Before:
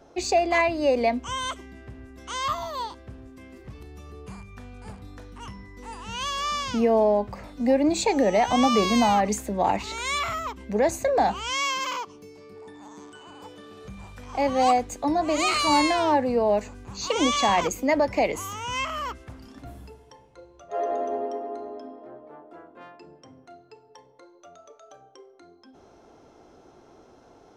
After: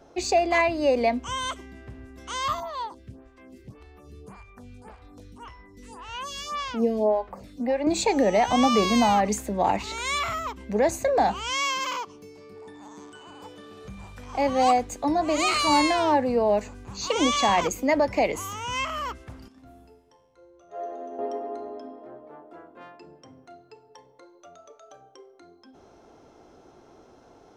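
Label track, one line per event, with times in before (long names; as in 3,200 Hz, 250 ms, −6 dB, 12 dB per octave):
2.600000	7.870000	phaser with staggered stages 1.8 Hz
19.480000	21.190000	tuned comb filter 87 Hz, decay 0.86 s, mix 80%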